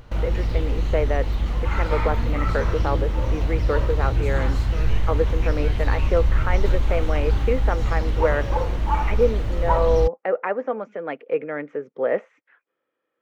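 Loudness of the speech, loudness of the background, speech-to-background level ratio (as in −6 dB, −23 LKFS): −26.5 LKFS, −24.5 LKFS, −2.0 dB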